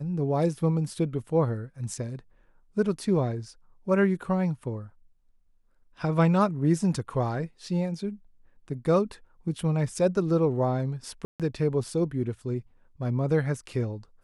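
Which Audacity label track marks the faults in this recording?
11.250000	11.400000	dropout 147 ms

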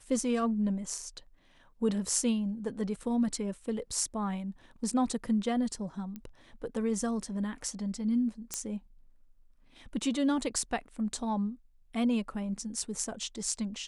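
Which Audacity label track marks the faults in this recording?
6.160000	6.160000	pop -28 dBFS
8.540000	8.540000	pop -16 dBFS

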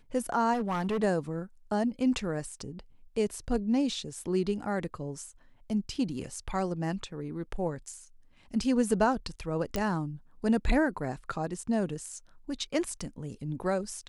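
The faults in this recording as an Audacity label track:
0.530000	1.040000	clipped -26 dBFS
9.760000	9.760000	pop -16 dBFS

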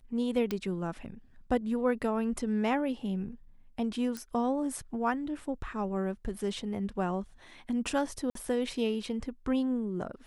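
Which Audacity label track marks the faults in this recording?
0.510000	0.510000	pop -18 dBFS
4.170000	4.170000	pop -23 dBFS
8.300000	8.350000	dropout 53 ms

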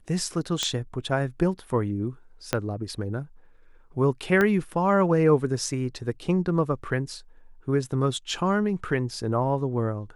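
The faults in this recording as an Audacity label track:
0.630000	0.630000	pop -10 dBFS
2.530000	2.530000	pop -8 dBFS
4.410000	4.410000	pop -11 dBFS

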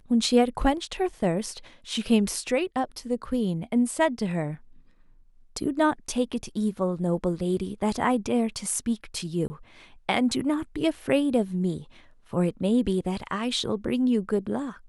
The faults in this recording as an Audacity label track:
9.480000	9.500000	dropout 20 ms

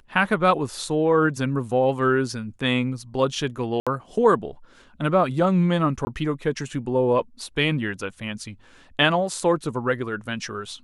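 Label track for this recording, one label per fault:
3.800000	3.870000	dropout 66 ms
6.050000	6.070000	dropout 20 ms

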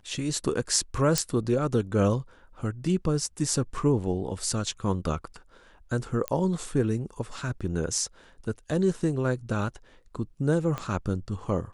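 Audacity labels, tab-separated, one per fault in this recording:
1.180000	1.180000	pop -8 dBFS
6.280000	6.280000	pop -12 dBFS
10.780000	10.780000	pop -18 dBFS

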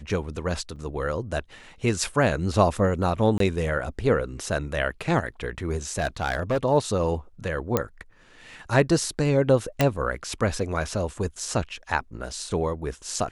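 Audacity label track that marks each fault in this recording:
0.760000	0.760000	dropout 4.4 ms
3.380000	3.400000	dropout 23 ms
5.920000	6.580000	clipped -19.5 dBFS
7.770000	7.770000	pop -7 dBFS
9.810000	9.810000	pop -6 dBFS

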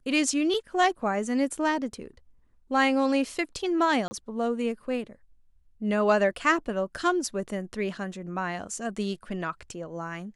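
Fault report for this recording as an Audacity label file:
4.080000	4.110000	dropout 30 ms

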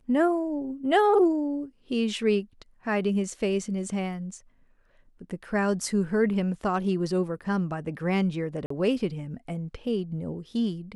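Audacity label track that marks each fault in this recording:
8.660000	8.700000	dropout 44 ms

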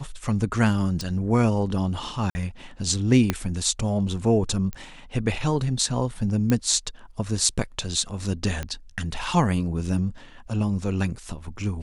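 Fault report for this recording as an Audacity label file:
1.010000	1.010000	pop
2.300000	2.350000	dropout 50 ms
3.300000	3.300000	pop -7 dBFS
4.730000	4.730000	pop -19 dBFS
6.500000	6.500000	pop -10 dBFS
8.630000	8.630000	pop -16 dBFS

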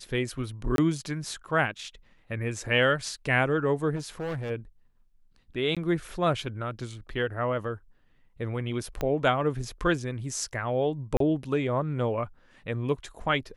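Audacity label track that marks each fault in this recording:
0.760000	0.780000	dropout 22 ms
3.950000	4.510000	clipped -29.5 dBFS
5.750000	5.770000	dropout 16 ms
9.010000	9.010000	pop -16 dBFS
11.170000	11.200000	dropout 33 ms

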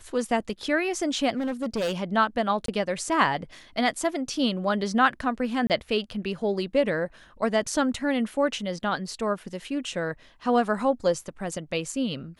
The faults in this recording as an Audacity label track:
1.370000	1.940000	clipped -23.5 dBFS
2.660000	2.680000	dropout 23 ms
5.670000	5.700000	dropout 28 ms

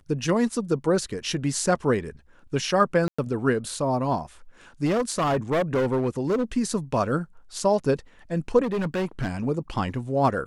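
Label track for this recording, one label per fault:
3.080000	3.190000	dropout 105 ms
4.850000	6.430000	clipped -19.5 dBFS
8.620000	9.450000	clipped -22.5 dBFS

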